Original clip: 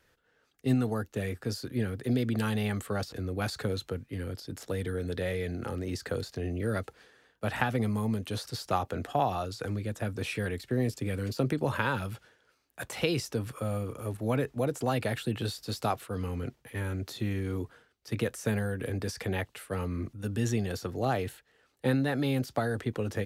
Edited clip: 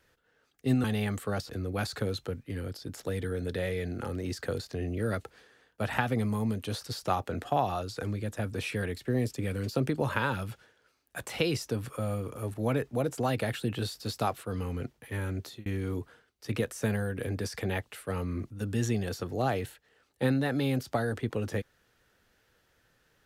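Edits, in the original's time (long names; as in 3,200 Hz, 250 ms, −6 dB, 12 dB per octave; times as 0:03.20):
0:00.84–0:02.47: remove
0:17.04–0:17.29: fade out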